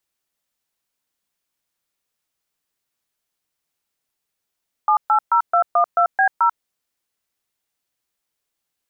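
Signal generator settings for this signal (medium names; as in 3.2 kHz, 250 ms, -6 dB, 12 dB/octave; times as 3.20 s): DTMF "780212B0", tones 90 ms, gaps 128 ms, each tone -15 dBFS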